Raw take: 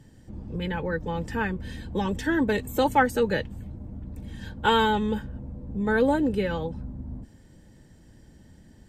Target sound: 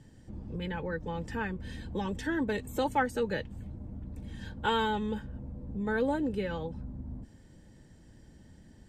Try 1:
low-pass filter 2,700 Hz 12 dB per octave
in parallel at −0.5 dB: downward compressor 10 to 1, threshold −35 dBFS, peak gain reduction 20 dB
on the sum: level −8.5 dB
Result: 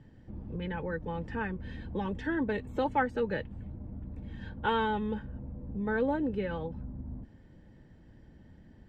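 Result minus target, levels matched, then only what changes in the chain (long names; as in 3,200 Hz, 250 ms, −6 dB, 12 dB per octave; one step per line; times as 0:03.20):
8,000 Hz band −18.0 dB
change: low-pass filter 11,000 Hz 12 dB per octave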